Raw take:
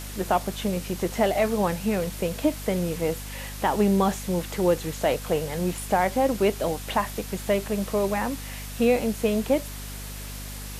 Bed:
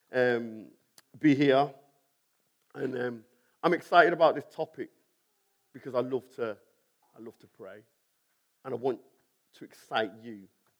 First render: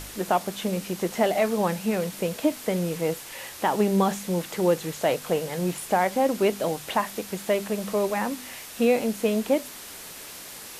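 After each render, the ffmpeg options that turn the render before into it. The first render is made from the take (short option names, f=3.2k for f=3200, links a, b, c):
-af "bandreject=f=50:t=h:w=4,bandreject=f=100:t=h:w=4,bandreject=f=150:t=h:w=4,bandreject=f=200:t=h:w=4,bandreject=f=250:t=h:w=4"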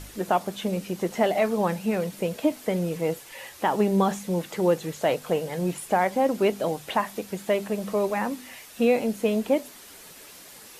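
-af "afftdn=nr=7:nf=-41"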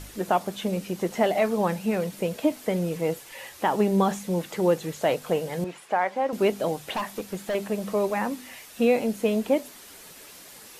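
-filter_complex "[0:a]asettb=1/sr,asplit=3[a][b][c];[a]atrim=end=5.644[d];[b]atrim=start=5.64:end=6.33,asetpts=PTS-STARTPTS,afade=t=in:d=0.004:c=qsin,afade=t=out:st=0.686:d=0.004:c=qsin,bandpass=f=1.3k:t=q:w=0.58[e];[c]atrim=start=6.326[f];[d][e]acrossfade=d=0.004:c1=hsin:c2=qsin[g];[g][f]acrossfade=d=0.004:c1=qsin:c2=hsin,asettb=1/sr,asplit=3[h][i][j];[h]atrim=end=6.954[k];[i]atrim=start=6.95:end=7.55,asetpts=PTS-STARTPTS,afade=t=in:d=0.004:c=qsin,afade=t=out:st=0.596:d=0.004:c=qsin,asoftclip=type=hard:threshold=-24dB[l];[j]atrim=start=7.546[m];[k][l]acrossfade=d=0.004:c1=hsin:c2=qsin[n];[n][m]acrossfade=d=0.004:c1=qsin:c2=hsin"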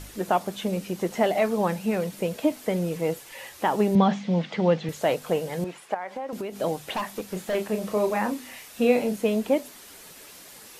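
-filter_complex "[0:a]asettb=1/sr,asplit=3[a][b][c];[a]atrim=end=3.954[d];[b]atrim=start=3.95:end=4.89,asetpts=PTS-STARTPTS,afade=t=in:d=0.004:c=qsin,afade=t=out:st=0.936:d=0.004:c=qsin,highpass=130,equalizer=f=160:t=q:w=4:g=7,equalizer=f=230:t=q:w=4:g=8,equalizer=f=360:t=q:w=4:g=-5,equalizer=f=690:t=q:w=4:g=4,equalizer=f=2.1k:t=q:w=4:g=5,equalizer=f=3.2k:t=q:w=4:g=5,lowpass=f=5.1k:w=0.5412,lowpass=f=5.1k:w=1.3066[e];[c]atrim=start=4.886[f];[d][e]acrossfade=d=0.004:c1=hsin:c2=qsin[g];[g][f]acrossfade=d=0.004:c1=qsin:c2=hsin,asettb=1/sr,asplit=3[h][i][j];[h]atrim=end=5.944[k];[i]atrim=start=5.94:end=6.56,asetpts=PTS-STARTPTS,afade=t=in:d=0.004:c=qsin,afade=t=out:st=0.616:d=0.004:c=qsin,acompressor=threshold=-28dB:ratio=16:attack=3.2:release=140:knee=1:detection=peak[l];[j]atrim=start=6.556[m];[k][l]acrossfade=d=0.004:c1=hsin:c2=qsin[n];[n][m]acrossfade=d=0.004:c1=qsin:c2=hsin,asettb=1/sr,asplit=3[o][p][q];[o]atrim=end=7.274[r];[p]atrim=start=7.27:end=9.18,asetpts=PTS-STARTPTS,afade=t=in:d=0.004:c=qsin,afade=t=out:st=1.906:d=0.004:c=qsin,asplit=2[s][t];[t]adelay=33,volume=-7dB[u];[s][u]amix=inputs=2:normalize=0,atrim=end_sample=84231[v];[q]atrim=start=9.176[w];[r][v]acrossfade=d=0.004:c1=hsin:c2=qsin[x];[x][w]acrossfade=d=0.004:c1=qsin:c2=hsin"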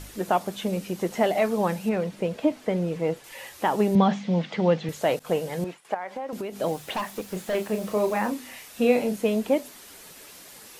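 -filter_complex "[0:a]asettb=1/sr,asplit=3[a][b][c];[a]atrim=end=1.894[d];[b]atrim=start=1.89:end=3.24,asetpts=PTS-STARTPTS,afade=t=in:d=0.004:c=qsin,afade=t=out:st=1.346:d=0.004:c=qsin,aemphasis=mode=reproduction:type=50fm[e];[c]atrim=start=3.236[f];[d][e]acrossfade=d=0.004:c1=hsin:c2=qsin[g];[g][f]acrossfade=d=0.004:c1=qsin:c2=hsin,asettb=1/sr,asplit=3[h][i][j];[h]atrim=end=5.194[k];[i]atrim=start=5.19:end=5.85,asetpts=PTS-STARTPTS,afade=t=in:d=0.004:c=qsin,afade=t=out:st=0.656:d=0.004:c=qsin,agate=range=-33dB:threshold=-40dB:ratio=3:release=100:detection=peak[l];[j]atrim=start=5.846[m];[k][l]acrossfade=d=0.004:c1=hsin:c2=qsin[n];[n][m]acrossfade=d=0.004:c1=qsin:c2=hsin,asettb=1/sr,asplit=3[o][p][q];[o]atrim=end=6.664[r];[p]atrim=start=6.66:end=8.3,asetpts=PTS-STARTPTS,afade=t=in:d=0.004:c=qsin,afade=t=out:st=1.636:d=0.004:c=qsin,acrusher=bits=7:mix=0:aa=0.5[s];[q]atrim=start=8.296[t];[r][s]acrossfade=d=0.004:c1=hsin:c2=qsin[u];[u][t]acrossfade=d=0.004:c1=qsin:c2=hsin"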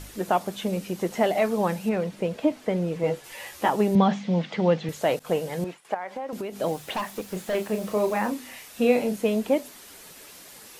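-filter_complex "[0:a]asettb=1/sr,asplit=3[a][b][c];[a]atrim=end=3.024[d];[b]atrim=start=3.02:end=3.7,asetpts=PTS-STARTPTS,afade=t=in:d=0.004:c=qsin,afade=t=out:st=0.676:d=0.004:c=qsin,asplit=2[e][f];[f]adelay=14,volume=-3dB[g];[e][g]amix=inputs=2:normalize=0,atrim=end_sample=29988[h];[c]atrim=start=3.696[i];[d][h]acrossfade=d=0.004:c1=hsin:c2=qsin[j];[j][i]acrossfade=d=0.004:c1=qsin:c2=hsin"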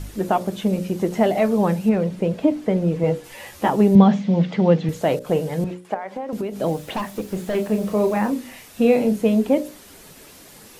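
-af "lowshelf=f=430:g=11,bandreject=f=60:t=h:w=6,bandreject=f=120:t=h:w=6,bandreject=f=180:t=h:w=6,bandreject=f=240:t=h:w=6,bandreject=f=300:t=h:w=6,bandreject=f=360:t=h:w=6,bandreject=f=420:t=h:w=6,bandreject=f=480:t=h:w=6,bandreject=f=540:t=h:w=6,bandreject=f=600:t=h:w=6"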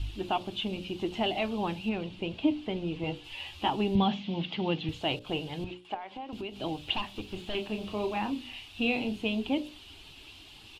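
-af "firequalizer=gain_entry='entry(100,0);entry(170,-17);entry(320,-6);entry(500,-20);entry(790,-7);entry(1300,-11);entry(1900,-13);entry(2800,7);entry(5900,-14);entry(13000,-23)':delay=0.05:min_phase=1"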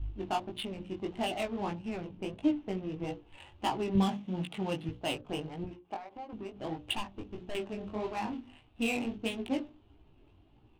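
-af "adynamicsmooth=sensitivity=6:basefreq=560,flanger=delay=16.5:depth=4.9:speed=1.6"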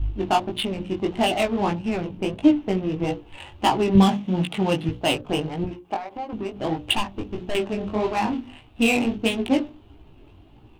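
-af "volume=12dB"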